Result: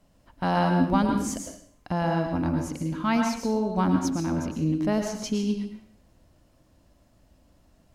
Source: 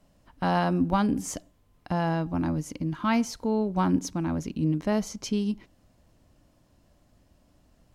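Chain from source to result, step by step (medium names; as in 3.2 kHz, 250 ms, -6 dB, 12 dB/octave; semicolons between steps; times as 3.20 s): plate-style reverb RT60 0.59 s, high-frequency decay 0.95×, pre-delay 95 ms, DRR 3.5 dB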